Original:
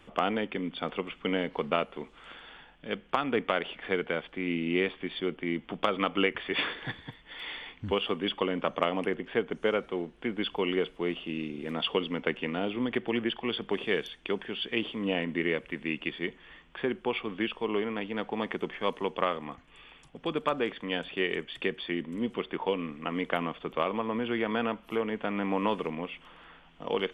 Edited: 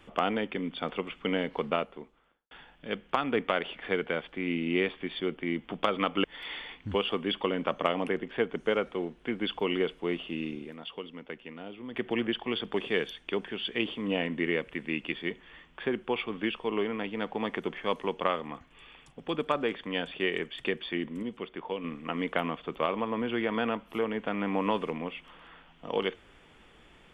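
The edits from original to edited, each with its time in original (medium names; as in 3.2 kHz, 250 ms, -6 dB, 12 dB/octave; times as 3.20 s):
1.58–2.51 s: studio fade out
6.24–7.21 s: delete
11.53–13.03 s: dip -11.5 dB, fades 0.18 s
22.20–22.81 s: gain -5.5 dB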